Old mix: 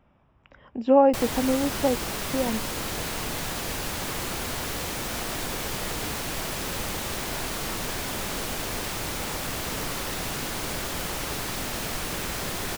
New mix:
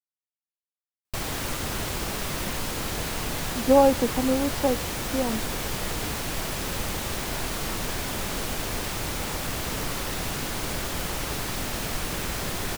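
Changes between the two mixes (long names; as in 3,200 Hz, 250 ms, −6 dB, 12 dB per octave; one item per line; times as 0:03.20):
speech: entry +2.80 s
background: add low-shelf EQ 140 Hz +4.5 dB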